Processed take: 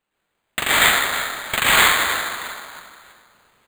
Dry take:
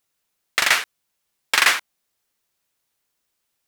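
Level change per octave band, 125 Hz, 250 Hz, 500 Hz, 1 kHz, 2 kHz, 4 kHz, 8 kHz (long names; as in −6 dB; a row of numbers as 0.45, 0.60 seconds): can't be measured, +12.5 dB, +9.0 dB, +7.0 dB, +4.0 dB, +4.0 dB, +4.5 dB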